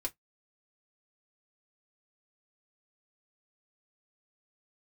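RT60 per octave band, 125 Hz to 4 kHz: 0.15 s, 0.10 s, 0.10 s, 0.10 s, 0.10 s, 0.10 s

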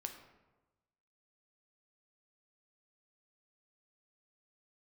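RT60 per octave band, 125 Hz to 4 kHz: 1.4 s, 1.2 s, 1.2 s, 1.1 s, 0.85 s, 0.65 s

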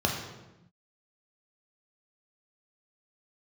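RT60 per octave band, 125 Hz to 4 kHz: 1.5 s, 1.4 s, 1.0 s, 0.90 s, 0.85 s, 0.75 s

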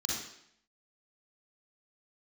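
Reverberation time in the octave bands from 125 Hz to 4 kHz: 0.70 s, 0.75 s, 0.70 s, 0.70 s, 0.75 s, 0.70 s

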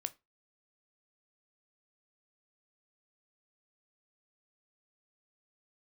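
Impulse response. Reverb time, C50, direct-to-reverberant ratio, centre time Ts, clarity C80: 0.25 s, 22.0 dB, 11.0 dB, 3 ms, 29.5 dB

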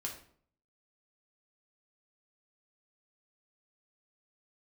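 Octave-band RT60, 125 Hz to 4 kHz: 0.70 s, 0.65 s, 0.60 s, 0.55 s, 0.45 s, 0.40 s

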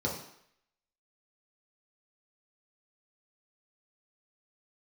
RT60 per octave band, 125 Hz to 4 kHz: 0.55 s, 0.60 s, 0.65 s, 0.70 s, 0.75 s, 0.70 s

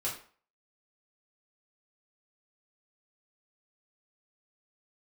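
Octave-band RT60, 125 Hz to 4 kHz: 0.35 s, 0.40 s, 0.45 s, 0.45 s, 0.40 s, 0.35 s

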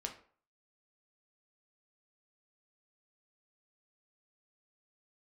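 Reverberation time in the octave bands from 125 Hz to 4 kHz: 0.45 s, 0.40 s, 0.50 s, 0.50 s, 0.40 s, 0.30 s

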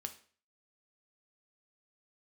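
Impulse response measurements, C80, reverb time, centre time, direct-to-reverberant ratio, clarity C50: 18.0 dB, 0.45 s, 8 ms, 6.0 dB, 13.0 dB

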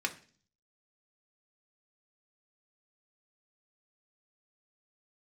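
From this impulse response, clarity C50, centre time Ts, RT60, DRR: 15.0 dB, 7 ms, 0.45 s, 3.0 dB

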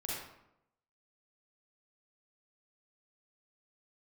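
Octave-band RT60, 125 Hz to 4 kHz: 0.90 s, 0.90 s, 0.85 s, 0.80 s, 0.65 s, 0.50 s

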